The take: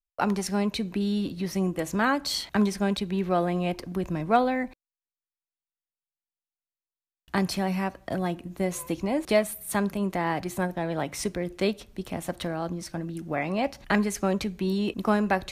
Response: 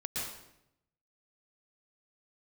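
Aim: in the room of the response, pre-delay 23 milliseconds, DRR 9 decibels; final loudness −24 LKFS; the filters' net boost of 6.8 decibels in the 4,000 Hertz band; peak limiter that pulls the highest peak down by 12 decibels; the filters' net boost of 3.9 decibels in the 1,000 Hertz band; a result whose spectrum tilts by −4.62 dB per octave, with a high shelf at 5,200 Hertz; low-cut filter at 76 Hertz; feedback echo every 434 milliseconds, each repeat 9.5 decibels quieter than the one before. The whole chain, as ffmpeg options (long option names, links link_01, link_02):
-filter_complex "[0:a]highpass=76,equalizer=frequency=1000:width_type=o:gain=5,equalizer=frequency=4000:width_type=o:gain=4,highshelf=frequency=5200:gain=8.5,alimiter=limit=-17.5dB:level=0:latency=1,aecho=1:1:434|868|1302|1736:0.335|0.111|0.0365|0.012,asplit=2[link_01][link_02];[1:a]atrim=start_sample=2205,adelay=23[link_03];[link_02][link_03]afir=irnorm=-1:irlink=0,volume=-12dB[link_04];[link_01][link_04]amix=inputs=2:normalize=0,volume=3.5dB"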